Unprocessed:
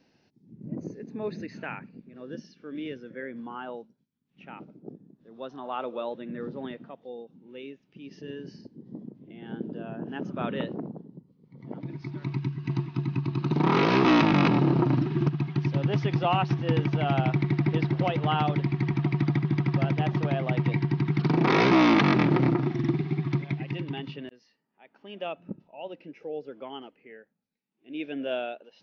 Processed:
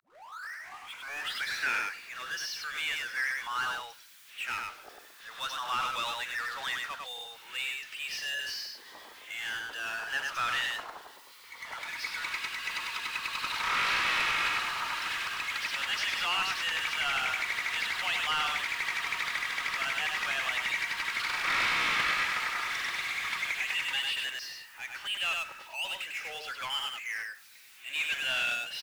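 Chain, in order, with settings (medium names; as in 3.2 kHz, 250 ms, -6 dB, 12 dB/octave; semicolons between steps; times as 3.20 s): tape start-up on the opening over 1.69 s; peak limiter -22 dBFS, peak gain reduction 10 dB; high-pass 1.4 kHz 24 dB/octave; echo from a far wall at 17 m, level -6 dB; power-law waveshaper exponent 0.5; slew-rate limiter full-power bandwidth 100 Hz; trim +3.5 dB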